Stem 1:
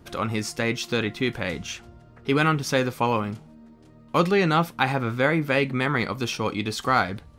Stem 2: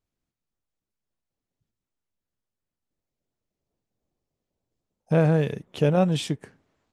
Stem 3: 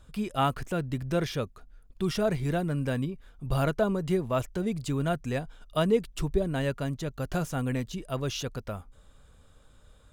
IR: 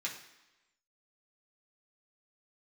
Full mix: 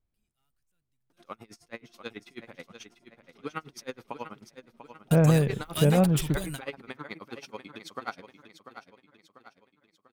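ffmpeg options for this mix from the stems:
-filter_complex "[0:a]highpass=210,bandreject=f=7300:w=11,aeval=exprs='val(0)*pow(10,-33*(0.5-0.5*cos(2*PI*9.3*n/s))/20)':c=same,adelay=1100,volume=0.316,asplit=2[s0][s1];[s1]volume=0.299[s2];[1:a]lowpass=2800,lowshelf=f=120:g=12,volume=0.668,asplit=2[s3][s4];[2:a]equalizer=f=500:w=0.62:g=-11.5,crystalizer=i=6:c=0,asoftclip=type=hard:threshold=0.0501,volume=0.841[s5];[s4]apad=whole_len=446515[s6];[s5][s6]sidechaingate=range=0.00355:threshold=0.00316:ratio=16:detection=peak[s7];[s2]aecho=0:1:693|1386|2079|2772|3465|4158:1|0.46|0.212|0.0973|0.0448|0.0206[s8];[s0][s3][s7][s8]amix=inputs=4:normalize=0"

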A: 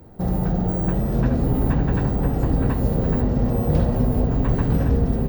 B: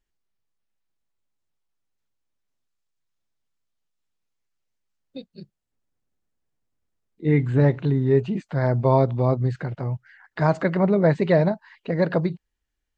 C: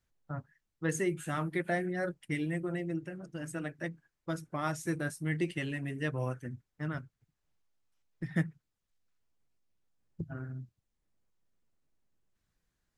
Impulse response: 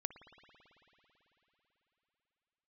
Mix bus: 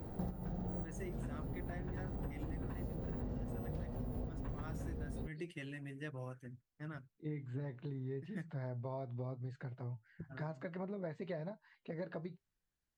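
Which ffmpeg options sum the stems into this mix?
-filter_complex "[0:a]volume=0.891[s0];[1:a]flanger=delay=6.3:depth=2.9:regen=67:speed=0.95:shape=triangular,volume=0.237[s1];[2:a]volume=0.316,asplit=2[s2][s3];[s3]apad=whole_len=233053[s4];[s0][s4]sidechaincompress=threshold=0.00282:ratio=8:attack=6.3:release=1020[s5];[s5][s1][s2]amix=inputs=3:normalize=0,acompressor=threshold=0.0112:ratio=6"

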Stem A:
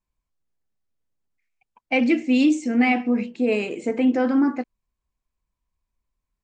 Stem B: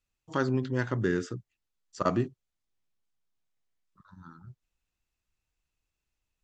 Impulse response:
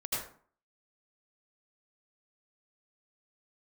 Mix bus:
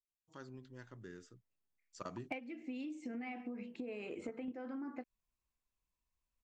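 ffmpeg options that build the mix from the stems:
-filter_complex "[0:a]bass=f=250:g=-3,treble=f=4000:g=-9,acompressor=threshold=0.0398:ratio=6,asoftclip=type=hard:threshold=0.119,adelay=400,volume=1.33[s0];[1:a]highshelf=f=4200:g=9,volume=0.178,afade=t=in:st=1.52:d=0.37:silence=0.354813,asplit=2[s1][s2];[s2]apad=whole_len=301440[s3];[s0][s3]sidechaingate=range=0.316:threshold=0.001:ratio=16:detection=peak[s4];[s4][s1]amix=inputs=2:normalize=0,acompressor=threshold=0.01:ratio=10"

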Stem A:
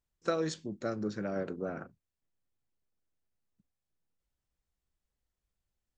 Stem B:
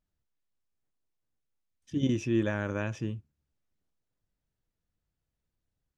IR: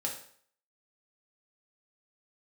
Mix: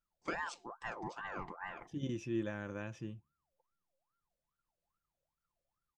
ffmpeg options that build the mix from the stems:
-filter_complex "[0:a]aeval=exprs='val(0)*sin(2*PI*960*n/s+960*0.45/2.4*sin(2*PI*2.4*n/s))':c=same,volume=0.501[s0];[1:a]volume=0.299[s1];[s0][s1]amix=inputs=2:normalize=0,aecho=1:1:5.8:0.3"

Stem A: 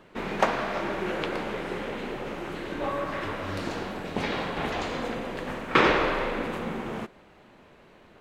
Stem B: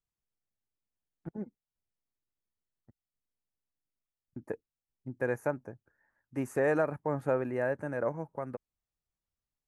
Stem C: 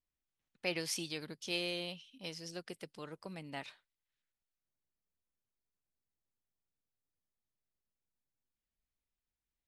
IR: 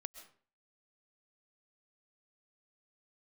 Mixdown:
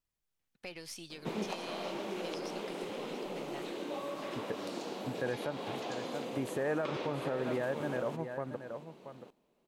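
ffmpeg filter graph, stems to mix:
-filter_complex "[0:a]highpass=f=160:w=0.5412,highpass=f=160:w=1.3066,equalizer=f=1700:w=1.1:g=-12.5,acrossover=split=270|2000[s0][s1][s2];[s0]acompressor=threshold=0.00178:ratio=4[s3];[s1]acompressor=threshold=0.0112:ratio=4[s4];[s2]acompressor=threshold=0.00398:ratio=4[s5];[s3][s4][s5]amix=inputs=3:normalize=0,adelay=1100,volume=1.06,asplit=2[s6][s7];[s7]volume=0.126[s8];[1:a]volume=1,asplit=2[s9][s10];[s10]volume=0.266[s11];[2:a]aeval=exprs='if(lt(val(0),0),0.708*val(0),val(0))':c=same,acompressor=threshold=0.00501:ratio=2.5,volume=1.06,asplit=2[s12][s13];[s13]volume=0.2[s14];[s8][s11][s14]amix=inputs=3:normalize=0,aecho=0:1:680:1[s15];[s6][s9][s12][s15]amix=inputs=4:normalize=0,alimiter=level_in=1.06:limit=0.0631:level=0:latency=1:release=113,volume=0.944"

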